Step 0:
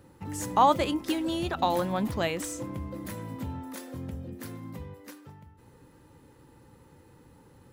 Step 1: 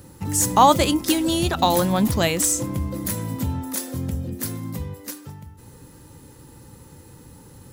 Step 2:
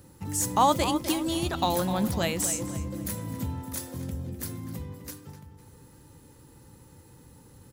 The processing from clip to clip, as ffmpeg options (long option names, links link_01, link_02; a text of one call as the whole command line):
ffmpeg -i in.wav -af "bass=frequency=250:gain=5,treble=frequency=4000:gain=12,volume=6.5dB" out.wav
ffmpeg -i in.wav -filter_complex "[0:a]asplit=2[link_01][link_02];[link_02]adelay=253,lowpass=frequency=3900:poles=1,volume=-10.5dB,asplit=2[link_03][link_04];[link_04]adelay=253,lowpass=frequency=3900:poles=1,volume=0.4,asplit=2[link_05][link_06];[link_06]adelay=253,lowpass=frequency=3900:poles=1,volume=0.4,asplit=2[link_07][link_08];[link_08]adelay=253,lowpass=frequency=3900:poles=1,volume=0.4[link_09];[link_01][link_03][link_05][link_07][link_09]amix=inputs=5:normalize=0,volume=-7.5dB" out.wav